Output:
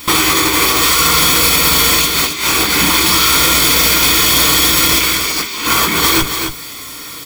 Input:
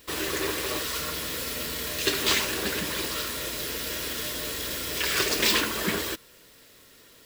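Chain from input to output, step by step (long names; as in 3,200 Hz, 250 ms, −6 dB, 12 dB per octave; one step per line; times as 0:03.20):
low-shelf EQ 180 Hz −9.5 dB
convolution reverb, pre-delay 3 ms, DRR 0 dB
in parallel at −10 dB: comparator with hysteresis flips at −33.5 dBFS
on the sum: compressor whose output falls as the input rises −28 dBFS, ratio −0.5
mains-hum notches 50/100/150/200/250/300/350/400 Hz
comb filter 0.9 ms, depth 66%
on a send: single-tap delay 271 ms −9 dB
on the sum: boost into a limiter +18 dB
level −1 dB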